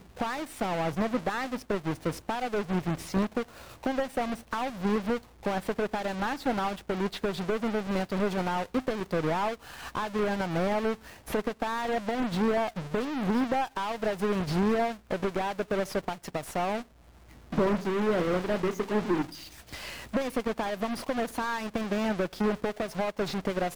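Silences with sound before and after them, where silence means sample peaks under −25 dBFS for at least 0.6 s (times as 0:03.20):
0:16.76–0:17.58
0:19.22–0:20.16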